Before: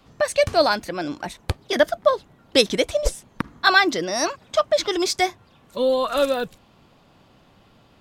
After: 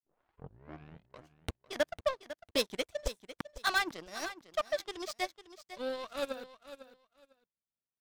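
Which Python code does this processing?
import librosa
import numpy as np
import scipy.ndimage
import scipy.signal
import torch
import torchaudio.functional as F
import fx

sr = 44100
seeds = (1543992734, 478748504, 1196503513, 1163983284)

p1 = fx.tape_start_head(x, sr, length_s=1.68)
p2 = fx.power_curve(p1, sr, exponent=2.0)
p3 = np.clip(p2, -10.0 ** (-17.0 / 20.0), 10.0 ** (-17.0 / 20.0))
p4 = p3 + fx.echo_feedback(p3, sr, ms=501, feedback_pct=19, wet_db=-13.5, dry=0)
y = p4 * 10.0 ** (-4.0 / 20.0)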